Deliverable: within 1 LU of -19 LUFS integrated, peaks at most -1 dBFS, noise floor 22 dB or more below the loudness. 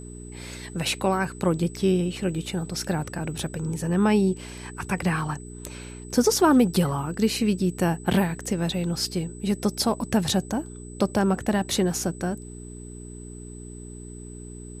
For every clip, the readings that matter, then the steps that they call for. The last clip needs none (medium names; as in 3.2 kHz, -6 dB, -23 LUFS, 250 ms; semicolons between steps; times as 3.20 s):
hum 60 Hz; highest harmonic 420 Hz; hum level -39 dBFS; steady tone 8 kHz; tone level -46 dBFS; loudness -25.0 LUFS; peak level -7.5 dBFS; loudness target -19.0 LUFS
-> de-hum 60 Hz, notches 7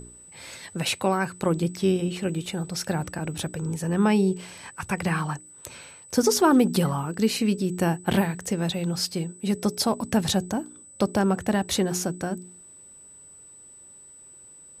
hum not found; steady tone 8 kHz; tone level -46 dBFS
-> band-stop 8 kHz, Q 30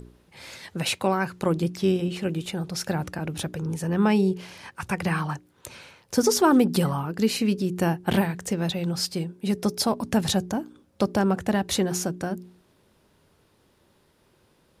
steady tone not found; loudness -25.5 LUFS; peak level -8.5 dBFS; loudness target -19.0 LUFS
-> trim +6.5 dB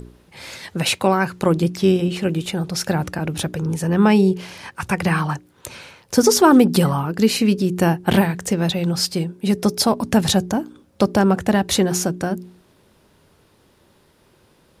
loudness -19.0 LUFS; peak level -2.0 dBFS; noise floor -57 dBFS